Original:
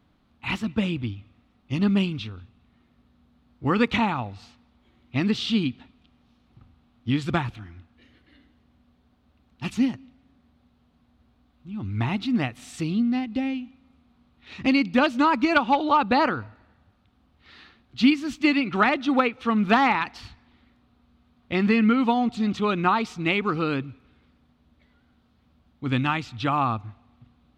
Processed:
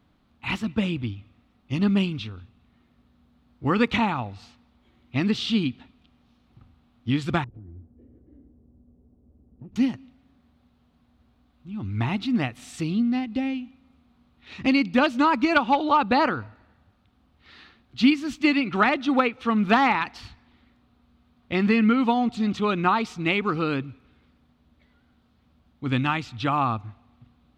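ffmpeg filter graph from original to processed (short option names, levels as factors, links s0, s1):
-filter_complex "[0:a]asettb=1/sr,asplit=3[s0][s1][s2];[s0]atrim=end=7.444[s3];[s1]atrim=start=7.44:end=9.76,asetpts=PTS-STARTPTS,afade=t=in:d=0.004:c=qsin,afade=t=out:st=2.316:d=0.004:c=qsin,lowpass=f=430:t=q:w=2.1,lowshelf=f=160:g=7.5,acompressor=threshold=0.0126:ratio=20:attack=3.2:release=140:knee=1:detection=peak[s4];[s2]atrim=start=9.756[s5];[s3][s4]acrossfade=d=0.004:c1=hsin:c2=qsin[s6];[s6][s5]acrossfade=d=0.004:c1=qsin:c2=hsin"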